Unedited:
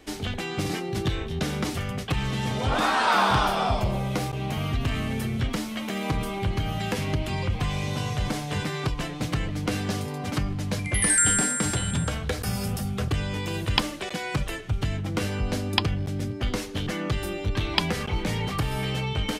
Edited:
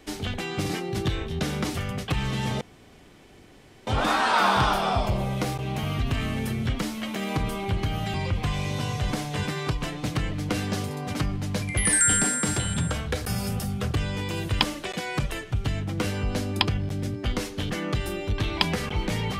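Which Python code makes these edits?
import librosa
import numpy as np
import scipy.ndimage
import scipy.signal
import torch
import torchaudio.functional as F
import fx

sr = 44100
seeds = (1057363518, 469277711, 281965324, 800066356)

y = fx.edit(x, sr, fx.insert_room_tone(at_s=2.61, length_s=1.26),
    fx.cut(start_s=6.88, length_s=0.43), tone=tone)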